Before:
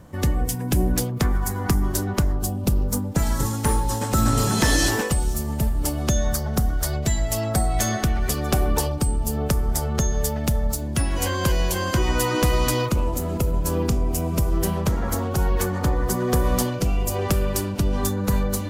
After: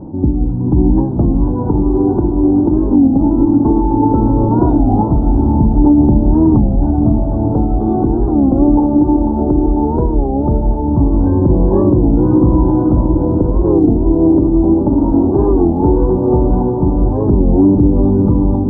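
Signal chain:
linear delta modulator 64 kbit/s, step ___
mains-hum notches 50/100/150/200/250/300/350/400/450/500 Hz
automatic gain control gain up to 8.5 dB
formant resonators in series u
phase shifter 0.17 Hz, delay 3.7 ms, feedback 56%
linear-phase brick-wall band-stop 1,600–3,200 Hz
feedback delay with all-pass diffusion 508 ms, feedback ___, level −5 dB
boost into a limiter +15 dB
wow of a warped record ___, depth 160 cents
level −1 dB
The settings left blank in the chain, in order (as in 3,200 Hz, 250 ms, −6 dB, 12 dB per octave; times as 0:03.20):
−32.5 dBFS, 57%, 33 1/3 rpm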